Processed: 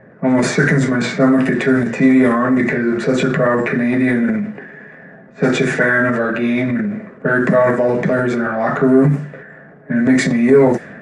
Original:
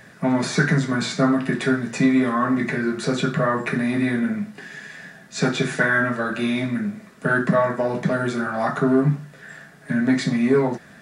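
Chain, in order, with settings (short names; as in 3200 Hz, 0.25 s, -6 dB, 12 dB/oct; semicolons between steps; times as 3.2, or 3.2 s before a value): ten-band EQ 125 Hz +4 dB, 250 Hz +5 dB, 500 Hz +11 dB, 2000 Hz +8 dB, 4000 Hz -5 dB, 8000 Hz +7 dB; transient shaper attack -1 dB, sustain +7 dB; low-pass opened by the level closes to 1000 Hz, open at -6.5 dBFS; gain -2 dB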